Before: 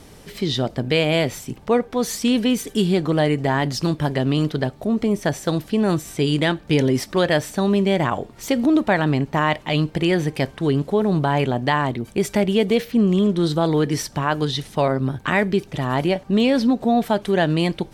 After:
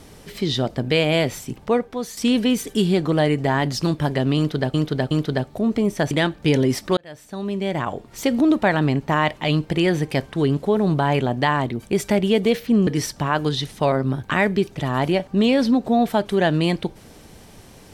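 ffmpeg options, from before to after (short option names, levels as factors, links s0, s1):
-filter_complex "[0:a]asplit=7[s0][s1][s2][s3][s4][s5][s6];[s0]atrim=end=2.17,asetpts=PTS-STARTPTS,afade=t=out:st=1.64:d=0.53:silence=0.281838[s7];[s1]atrim=start=2.17:end=4.742,asetpts=PTS-STARTPTS,afade=t=in:d=0.004:c=hsin:silence=0.281838[s8];[s2]atrim=start=4.368:end=4.742[s9];[s3]atrim=start=4.368:end=5.372[s10];[s4]atrim=start=6.358:end=7.22,asetpts=PTS-STARTPTS,afade=t=out:st=0.858:d=0.004:c=hsin[s11];[s5]atrim=start=7.22:end=13.122,asetpts=PTS-STARTPTS,afade=t=in:d=1.3[s12];[s6]atrim=start=13.828[s13];[s7][s8]concat=n=2:v=0:a=1[s14];[s14][s9]acrossfade=d=0.004:c1=hsin:c2=hsin[s15];[s15][s10]acrossfade=d=0.004:c1=hsin:c2=hsin[s16];[s11][s12]concat=n=2:v=0:a=1[s17];[s16][s17]acrossfade=d=0.004:c1=hsin:c2=hsin[s18];[s18][s13]acrossfade=d=0.004:c1=hsin:c2=hsin"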